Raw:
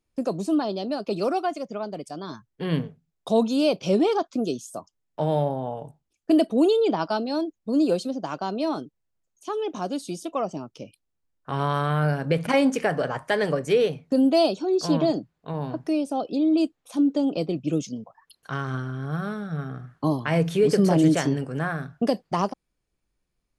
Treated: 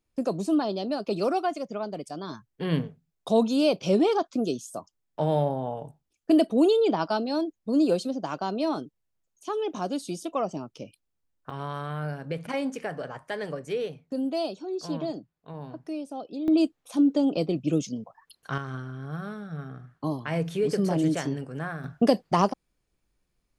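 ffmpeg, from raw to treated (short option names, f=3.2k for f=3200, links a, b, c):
-af "asetnsamples=n=441:p=0,asendcmd='11.5 volume volume -9.5dB;16.48 volume volume 0dB;18.58 volume volume -6dB;21.84 volume volume 2.5dB',volume=-1dB"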